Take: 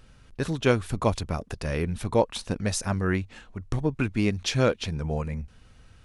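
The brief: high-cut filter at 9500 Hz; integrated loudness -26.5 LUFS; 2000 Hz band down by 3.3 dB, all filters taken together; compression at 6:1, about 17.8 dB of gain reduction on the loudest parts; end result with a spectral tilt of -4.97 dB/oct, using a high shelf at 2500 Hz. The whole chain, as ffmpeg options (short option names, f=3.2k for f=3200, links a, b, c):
-af "lowpass=9.5k,equalizer=f=2k:t=o:g=-7,highshelf=f=2.5k:g=5,acompressor=threshold=-36dB:ratio=6,volume=14dB"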